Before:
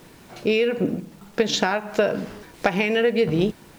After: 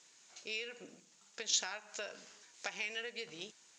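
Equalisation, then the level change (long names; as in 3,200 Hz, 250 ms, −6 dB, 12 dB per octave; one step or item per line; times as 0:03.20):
resonant band-pass 6,900 Hz, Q 5.6
high-frequency loss of the air 130 metres
+11.5 dB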